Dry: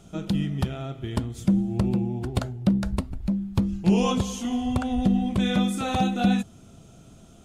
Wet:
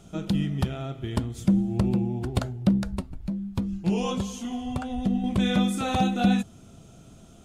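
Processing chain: 2.83–5.24 s: flange 1.3 Hz, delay 4 ms, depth 3 ms, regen +67%

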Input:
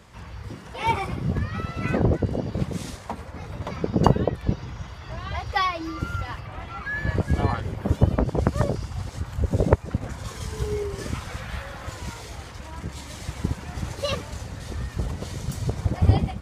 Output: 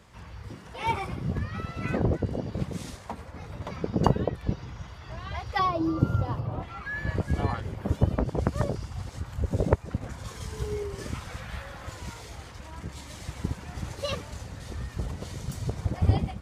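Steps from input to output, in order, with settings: 5.59–6.63 s: ten-band graphic EQ 125 Hz +12 dB, 250 Hz +9 dB, 500 Hz +9 dB, 1 kHz +5 dB, 2 kHz -11 dB, 8 kHz -6 dB; trim -4.5 dB

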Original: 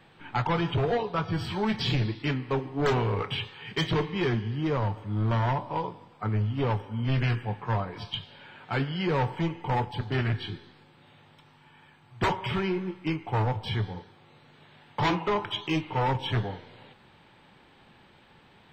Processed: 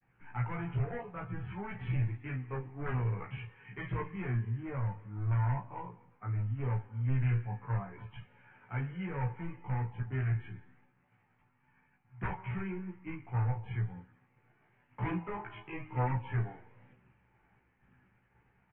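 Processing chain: steep low-pass 2.4 kHz 48 dB/octave; peaking EQ 550 Hz -6.5 dB 2 oct; early reflections 16 ms -7.5 dB, 35 ms -9.5 dB; chorus voices 6, 0.52 Hz, delay 16 ms, depth 1.4 ms; expander -57 dBFS; trim -6.5 dB

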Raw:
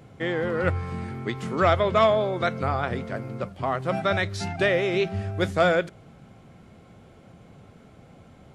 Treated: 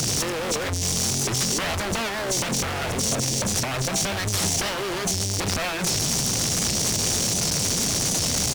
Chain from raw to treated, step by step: one-bit delta coder 64 kbps, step -18 dBFS; resampled via 11.025 kHz; peak limiter -20 dBFS, peak gain reduction 12.5 dB; Chebyshev shaper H 7 -7 dB, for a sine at -14 dBFS; in parallel at -9 dB: fuzz box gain 44 dB, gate -49 dBFS; on the sum: compressor with a negative ratio -21 dBFS, ratio -0.5; warped record 78 rpm, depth 100 cents; trim -2.5 dB

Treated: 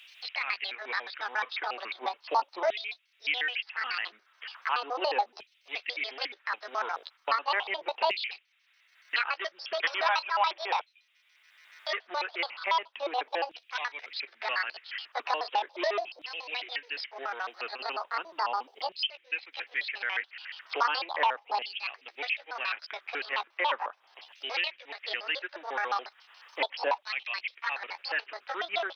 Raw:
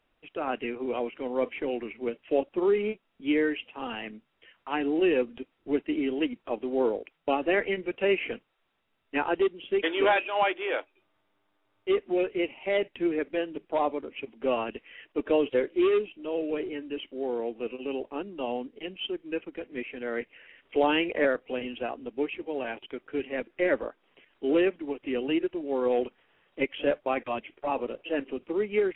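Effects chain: pitch shift switched off and on +8.5 st, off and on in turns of 71 ms; LFO high-pass saw down 0.37 Hz 800–2800 Hz; three bands compressed up and down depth 70%

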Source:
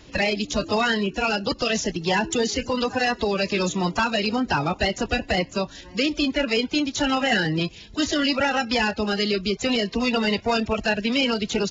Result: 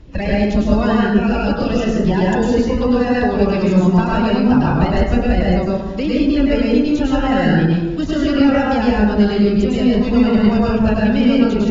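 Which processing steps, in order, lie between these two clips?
9.44–10.78 s: transient shaper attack -5 dB, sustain +5 dB; tilt EQ -3.5 dB/octave; plate-style reverb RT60 1.1 s, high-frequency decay 0.45×, pre-delay 90 ms, DRR -5 dB; trim -3 dB

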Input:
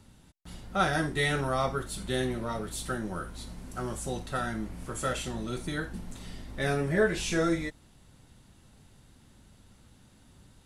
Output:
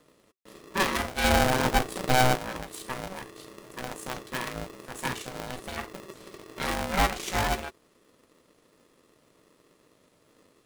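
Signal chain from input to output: 1.24–2.36 s: resonant low shelf 530 Hz +6.5 dB, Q 3; Chebyshev shaper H 5 -22 dB, 7 -18 dB, 8 -20 dB, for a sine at -11.5 dBFS; polarity switched at an audio rate 380 Hz

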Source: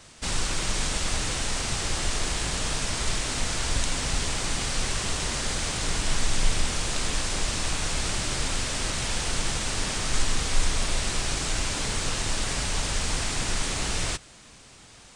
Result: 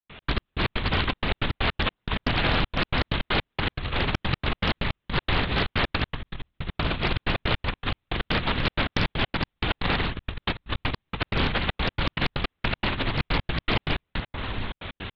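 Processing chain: in parallel at +1.5 dB: peak limiter -20.5 dBFS, peak gain reduction 10.5 dB; on the sum: echo whose repeats swap between lows and highs 578 ms, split 1.9 kHz, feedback 81%, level -14 dB; LPC vocoder at 8 kHz whisper; trance gate ".x.x..x.xxxx.x.x" 159 bpm -60 dB; compressor with a negative ratio -24 dBFS, ratio -0.5; loudspeaker Doppler distortion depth 0.62 ms

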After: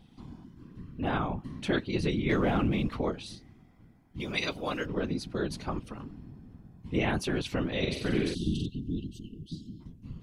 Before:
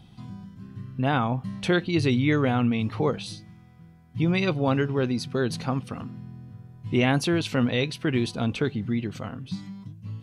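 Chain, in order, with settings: 4.20–4.86 s: RIAA curve recording; 7.78–8.66 s: flutter echo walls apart 7.7 m, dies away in 0.93 s; 8.34–9.81 s: spectral selection erased 290–2700 Hz; whisper effect; 2.29–2.97 s: waveshaping leveller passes 1; trim -6.5 dB

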